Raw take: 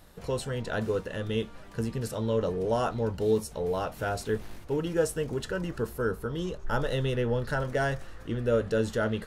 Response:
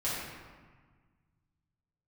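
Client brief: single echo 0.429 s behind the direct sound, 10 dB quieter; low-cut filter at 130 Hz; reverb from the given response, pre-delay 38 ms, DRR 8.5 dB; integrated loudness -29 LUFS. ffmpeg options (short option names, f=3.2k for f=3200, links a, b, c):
-filter_complex "[0:a]highpass=130,aecho=1:1:429:0.316,asplit=2[a][b];[1:a]atrim=start_sample=2205,adelay=38[c];[b][c]afir=irnorm=-1:irlink=0,volume=-15.5dB[d];[a][d]amix=inputs=2:normalize=0,volume=1dB"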